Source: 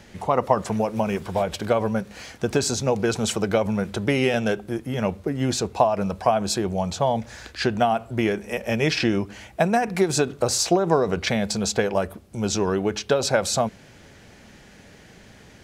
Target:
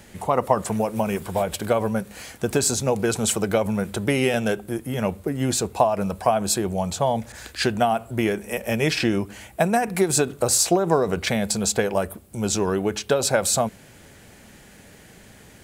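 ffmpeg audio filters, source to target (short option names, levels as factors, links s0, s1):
-filter_complex "[0:a]aexciter=amount=2.6:drive=7.6:freq=7700,asettb=1/sr,asplit=3[s0][s1][s2];[s0]atrim=end=7.324[s3];[s1]atrim=start=7.32:end=7.72,asetpts=PTS-STARTPTS,afade=t=in:d=0.004:c=qsin,afade=t=out:st=0.396:d=0.004:c=qsin,adynamicequalizer=threshold=0.00794:dfrequency=2000:dqfactor=0.7:tfrequency=2000:tqfactor=0.7:attack=5:release=100:ratio=0.375:range=2:mode=boostabove:tftype=highshelf[s4];[s2]atrim=start=7.716[s5];[s3][s4]acrossfade=d=0.004:c1=hsin:c2=qsin[s6];[s6][s5]acrossfade=d=0.004:c1=qsin:c2=hsin"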